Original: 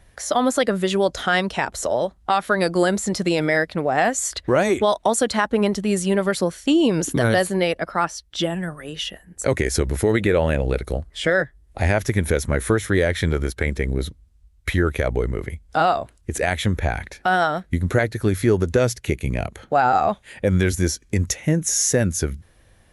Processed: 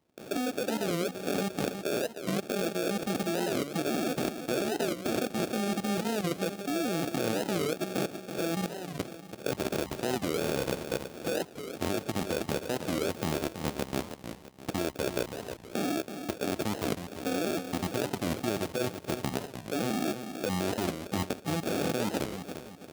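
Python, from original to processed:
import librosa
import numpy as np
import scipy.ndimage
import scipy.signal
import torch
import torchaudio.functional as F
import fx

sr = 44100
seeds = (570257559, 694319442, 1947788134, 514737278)

p1 = fx.peak_eq(x, sr, hz=430.0, db=-8.5, octaves=0.23)
p2 = fx.sample_hold(p1, sr, seeds[0], rate_hz=1000.0, jitter_pct=0)
p3 = scipy.signal.sosfilt(scipy.signal.butter(2, 210.0, 'highpass', fs=sr, output='sos'), p2)
p4 = fx.peak_eq(p3, sr, hz=1500.0, db=-4.5, octaves=1.0)
p5 = fx.level_steps(p4, sr, step_db=15)
p6 = p5 + fx.echo_feedback(p5, sr, ms=328, feedback_pct=41, wet_db=-9, dry=0)
y = fx.record_warp(p6, sr, rpm=45.0, depth_cents=250.0)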